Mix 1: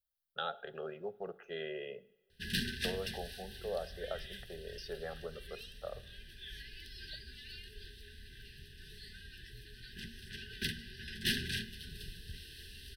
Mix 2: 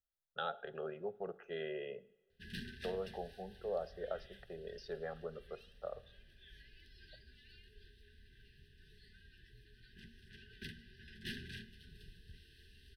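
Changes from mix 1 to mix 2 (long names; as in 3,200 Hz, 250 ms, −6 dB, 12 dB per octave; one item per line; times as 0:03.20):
background −8.5 dB
master: add high-shelf EQ 3,900 Hz −11.5 dB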